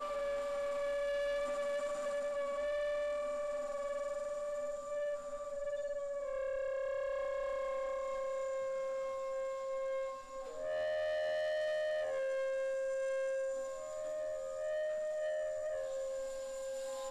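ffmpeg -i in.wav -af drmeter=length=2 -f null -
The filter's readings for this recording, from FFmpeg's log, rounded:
Channel 1: DR: -0.5
Overall DR: -0.5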